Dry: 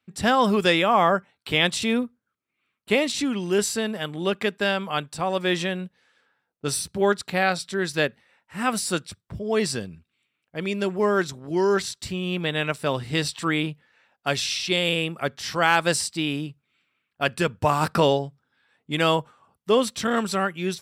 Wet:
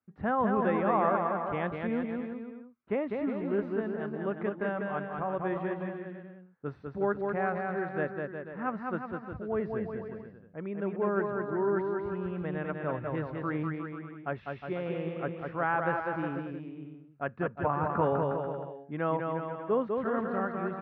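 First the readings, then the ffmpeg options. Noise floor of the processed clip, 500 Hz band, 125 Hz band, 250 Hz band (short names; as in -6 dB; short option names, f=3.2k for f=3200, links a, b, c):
-54 dBFS, -6.5 dB, -6.5 dB, -6.0 dB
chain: -af "lowpass=f=1.6k:w=0.5412,lowpass=f=1.6k:w=1.3066,aecho=1:1:200|360|488|590.4|672.3:0.631|0.398|0.251|0.158|0.1,volume=-8.5dB"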